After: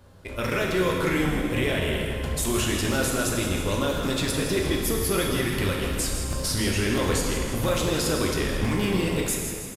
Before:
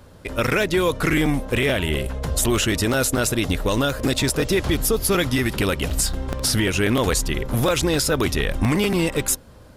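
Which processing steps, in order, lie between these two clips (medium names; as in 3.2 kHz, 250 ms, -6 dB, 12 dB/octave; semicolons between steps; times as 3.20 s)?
frequency-shifting echo 162 ms, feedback 53%, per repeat -97 Hz, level -10.5 dB; plate-style reverb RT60 2.1 s, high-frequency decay 0.85×, DRR -1 dB; trim -8 dB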